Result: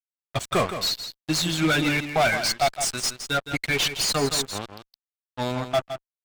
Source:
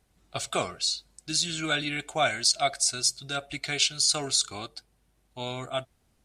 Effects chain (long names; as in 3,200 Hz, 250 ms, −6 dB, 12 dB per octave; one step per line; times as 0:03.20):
spectral dynamics exaggerated over time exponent 1.5
fuzz pedal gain 34 dB, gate −42 dBFS
high-shelf EQ 3,300 Hz −8 dB
single-tap delay 165 ms −10 dB
level −3 dB